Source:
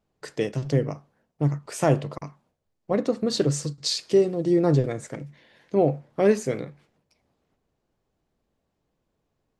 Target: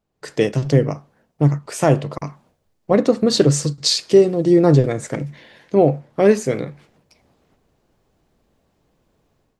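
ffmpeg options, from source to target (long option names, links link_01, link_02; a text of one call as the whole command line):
ffmpeg -i in.wav -af "dynaudnorm=framelen=110:gausssize=5:maxgain=13dB,volume=-1dB" out.wav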